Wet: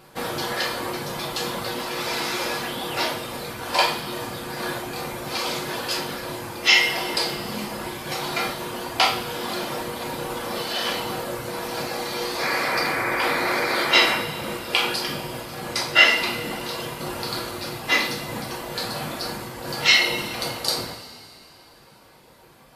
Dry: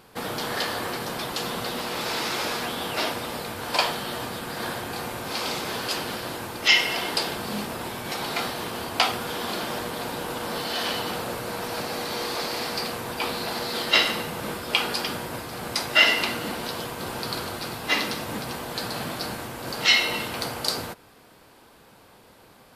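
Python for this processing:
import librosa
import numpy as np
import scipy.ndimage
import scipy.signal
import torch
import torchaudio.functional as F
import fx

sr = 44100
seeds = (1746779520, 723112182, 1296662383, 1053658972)

y = fx.dereverb_blind(x, sr, rt60_s=1.4)
y = fx.spec_paint(y, sr, seeds[0], shape='noise', start_s=12.4, length_s=1.76, low_hz=260.0, high_hz=2500.0, level_db=-29.0)
y = fx.high_shelf(y, sr, hz=11000.0, db=-5.5, at=(15.63, 16.18))
y = fx.rev_double_slope(y, sr, seeds[1], early_s=0.49, late_s=3.0, knee_db=-16, drr_db=-2.0)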